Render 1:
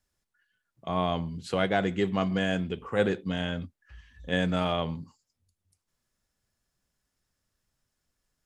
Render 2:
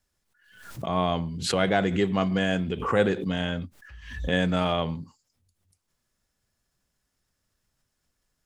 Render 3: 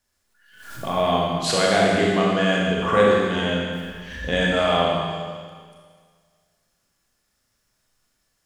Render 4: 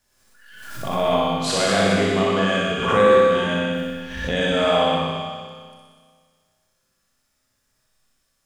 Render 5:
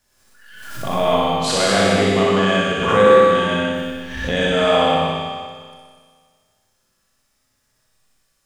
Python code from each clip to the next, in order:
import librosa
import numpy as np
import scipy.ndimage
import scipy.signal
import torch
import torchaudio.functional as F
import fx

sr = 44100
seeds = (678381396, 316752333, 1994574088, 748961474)

y1 = fx.pre_swell(x, sr, db_per_s=75.0)
y1 = y1 * 10.0 ** (2.5 / 20.0)
y2 = fx.low_shelf(y1, sr, hz=310.0, db=-6.0)
y2 = fx.rev_schroeder(y2, sr, rt60_s=1.8, comb_ms=27, drr_db=-3.5)
y2 = y2 * 10.0 ** (2.5 / 20.0)
y3 = fx.room_flutter(y2, sr, wall_m=10.6, rt60_s=1.1)
y3 = fx.pre_swell(y3, sr, db_per_s=52.0)
y3 = y3 * 10.0 ** (-2.0 / 20.0)
y4 = y3 + 10.0 ** (-7.5 / 20.0) * np.pad(y3, (int(161 * sr / 1000.0), 0))[:len(y3)]
y4 = y4 * 10.0 ** (2.5 / 20.0)